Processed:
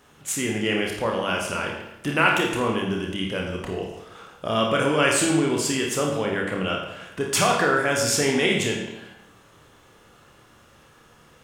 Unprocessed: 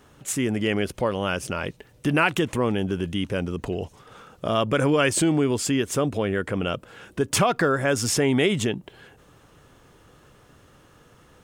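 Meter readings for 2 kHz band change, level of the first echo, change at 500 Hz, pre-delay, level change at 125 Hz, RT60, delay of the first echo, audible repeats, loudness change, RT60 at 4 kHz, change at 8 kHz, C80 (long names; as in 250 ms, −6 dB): +3.5 dB, no echo audible, 0.0 dB, 27 ms, −3.0 dB, 0.90 s, no echo audible, no echo audible, +1.0 dB, 0.80 s, +2.5 dB, 5.5 dB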